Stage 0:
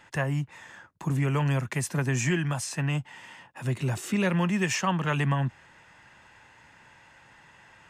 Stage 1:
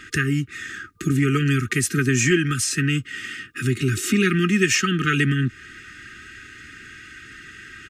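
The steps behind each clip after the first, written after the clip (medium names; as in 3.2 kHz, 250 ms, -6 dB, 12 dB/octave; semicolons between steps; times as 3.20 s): FFT band-reject 460–1200 Hz; comb 3.2 ms, depth 47%; in parallel at +3 dB: compression, threshold -38 dBFS, peak gain reduction 15.5 dB; on the sum: trim +6 dB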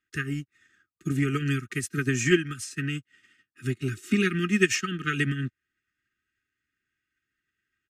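upward expansion 2.5:1, over -42 dBFS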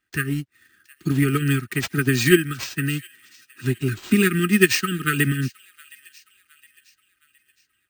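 careless resampling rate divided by 4×, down none, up hold; band-stop 2.2 kHz, Q 27; feedback echo behind a high-pass 715 ms, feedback 44%, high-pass 2.5 kHz, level -18.5 dB; trim +6 dB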